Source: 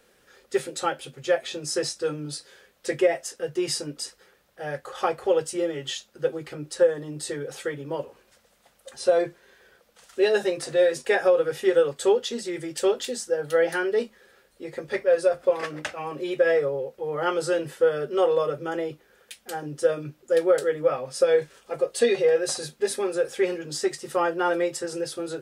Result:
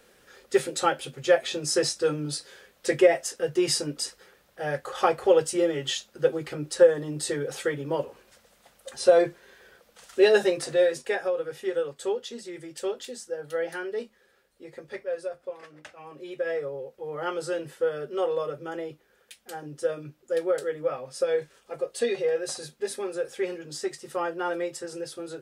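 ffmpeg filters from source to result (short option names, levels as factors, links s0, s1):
-af "volume=5.01,afade=t=out:st=10.35:d=0.89:silence=0.298538,afade=t=out:st=14.69:d=0.97:silence=0.354813,afade=t=in:st=15.66:d=1.4:silence=0.266073"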